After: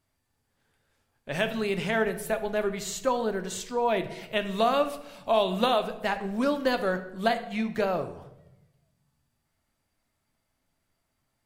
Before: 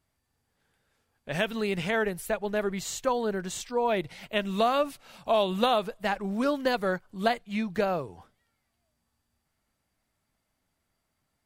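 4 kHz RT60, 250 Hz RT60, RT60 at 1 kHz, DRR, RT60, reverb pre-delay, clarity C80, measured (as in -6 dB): 0.60 s, 1.3 s, 0.80 s, 8.0 dB, 0.90 s, 3 ms, 14.5 dB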